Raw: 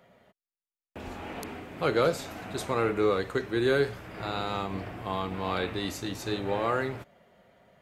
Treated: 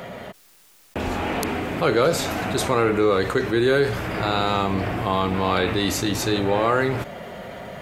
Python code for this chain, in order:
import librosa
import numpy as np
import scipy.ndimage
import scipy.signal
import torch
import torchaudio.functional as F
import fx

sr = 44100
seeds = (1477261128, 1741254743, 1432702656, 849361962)

y = fx.env_flatten(x, sr, amount_pct=50)
y = y * 10.0 ** (5.0 / 20.0)